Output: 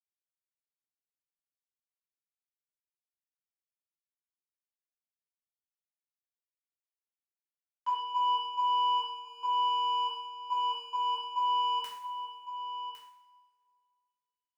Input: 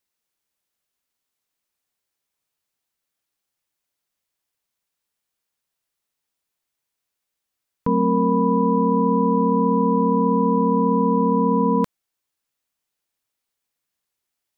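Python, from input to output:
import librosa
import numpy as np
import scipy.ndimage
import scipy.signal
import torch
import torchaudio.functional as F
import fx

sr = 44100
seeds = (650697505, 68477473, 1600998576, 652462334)

y = scipy.signal.sosfilt(scipy.signal.ellip(4, 1.0, 70, 860.0, 'highpass', fs=sr, output='sos'), x)
y = fx.power_curve(y, sr, exponent=2.0)
y = fx.step_gate(y, sr, bpm=70, pattern='.xx..xxx..x.x', floor_db=-12.0, edge_ms=4.5)
y = y + 10.0 ** (-11.0 / 20.0) * np.pad(y, (int(1107 * sr / 1000.0), 0))[:len(y)]
y = fx.rev_double_slope(y, sr, seeds[0], early_s=0.68, late_s=2.5, knee_db=-22, drr_db=-7.5)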